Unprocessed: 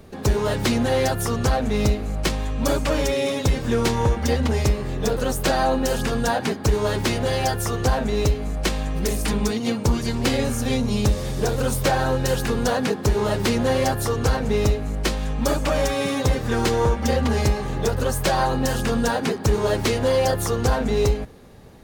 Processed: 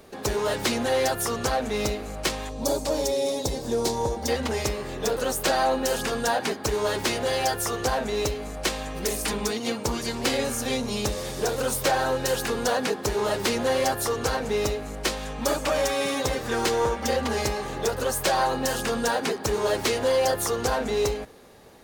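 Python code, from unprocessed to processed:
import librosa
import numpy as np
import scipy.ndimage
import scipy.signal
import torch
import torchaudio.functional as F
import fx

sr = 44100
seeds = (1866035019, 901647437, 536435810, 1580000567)

p1 = fx.bass_treble(x, sr, bass_db=-12, treble_db=2)
p2 = 10.0 ** (-23.0 / 20.0) * np.tanh(p1 / 10.0 ** (-23.0 / 20.0))
p3 = p1 + (p2 * 10.0 ** (-6.0 / 20.0))
p4 = fx.band_shelf(p3, sr, hz=1900.0, db=-11.5, octaves=1.7, at=(2.49, 4.28))
y = p4 * 10.0 ** (-3.5 / 20.0)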